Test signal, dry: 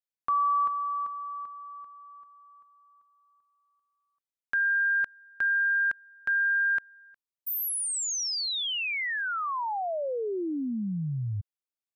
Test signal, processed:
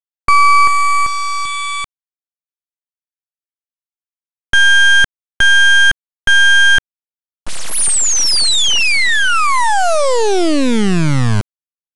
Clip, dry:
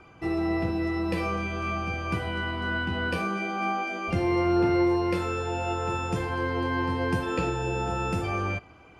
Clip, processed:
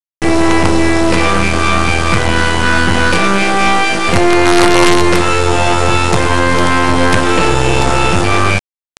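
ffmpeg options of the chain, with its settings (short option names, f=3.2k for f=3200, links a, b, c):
-af "acrusher=bits=4:dc=4:mix=0:aa=0.000001,aresample=22050,aresample=44100,apsyclip=24dB,volume=-1.5dB"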